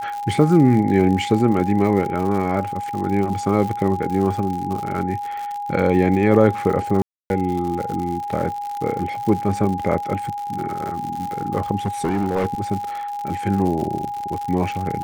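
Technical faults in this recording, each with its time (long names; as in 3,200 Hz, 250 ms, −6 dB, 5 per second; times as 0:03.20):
surface crackle 110 per second −26 dBFS
whistle 820 Hz −25 dBFS
0:07.02–0:07.30: drop-out 281 ms
0:11.86–0:12.46: clipping −16 dBFS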